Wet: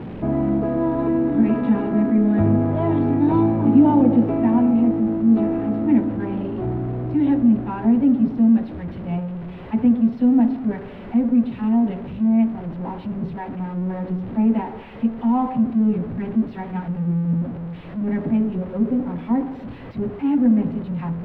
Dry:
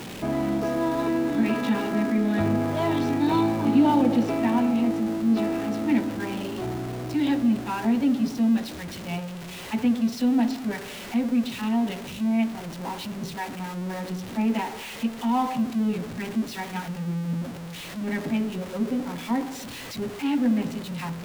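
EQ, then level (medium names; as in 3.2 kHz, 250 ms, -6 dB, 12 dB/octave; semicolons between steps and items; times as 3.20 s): distance through air 460 m; tilt shelf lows +5.5 dB, about 1.4 kHz; bass shelf 150 Hz +5.5 dB; 0.0 dB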